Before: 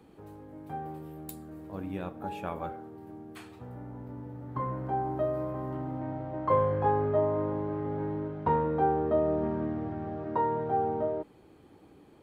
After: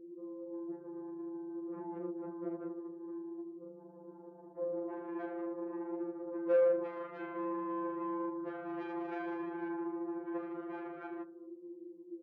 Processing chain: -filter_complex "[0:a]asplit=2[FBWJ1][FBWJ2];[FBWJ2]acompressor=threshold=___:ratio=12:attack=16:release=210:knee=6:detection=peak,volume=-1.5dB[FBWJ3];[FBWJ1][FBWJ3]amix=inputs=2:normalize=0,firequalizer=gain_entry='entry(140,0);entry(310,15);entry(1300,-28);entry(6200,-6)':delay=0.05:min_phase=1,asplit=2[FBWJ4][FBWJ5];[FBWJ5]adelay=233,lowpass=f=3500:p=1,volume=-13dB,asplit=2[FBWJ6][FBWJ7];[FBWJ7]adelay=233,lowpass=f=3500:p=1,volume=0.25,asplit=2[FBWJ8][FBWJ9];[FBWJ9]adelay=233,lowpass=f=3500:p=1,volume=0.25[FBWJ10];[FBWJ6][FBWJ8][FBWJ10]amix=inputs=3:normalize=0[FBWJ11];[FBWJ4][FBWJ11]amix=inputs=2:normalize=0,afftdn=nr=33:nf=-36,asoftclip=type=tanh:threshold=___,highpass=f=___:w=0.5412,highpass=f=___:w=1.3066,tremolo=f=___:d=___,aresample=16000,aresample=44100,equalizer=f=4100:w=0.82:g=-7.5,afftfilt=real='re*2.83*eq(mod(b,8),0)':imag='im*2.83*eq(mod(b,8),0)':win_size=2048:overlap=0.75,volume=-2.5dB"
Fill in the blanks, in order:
-42dB, -22.5dB, 240, 240, 26, 0.75